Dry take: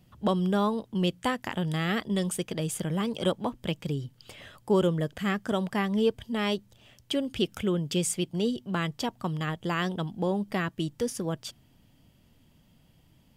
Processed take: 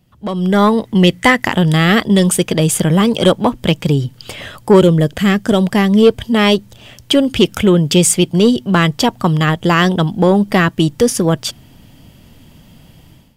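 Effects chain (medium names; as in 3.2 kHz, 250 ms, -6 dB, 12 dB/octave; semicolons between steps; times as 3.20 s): 0.49–1.45 s: peaking EQ 2 kHz +13.5 dB 0.22 oct; saturation -18 dBFS, distortion -20 dB; level rider gain up to 16 dB; 4.80–6.03 s: dynamic bell 1.2 kHz, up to -6 dB, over -28 dBFS, Q 0.84; trim +2.5 dB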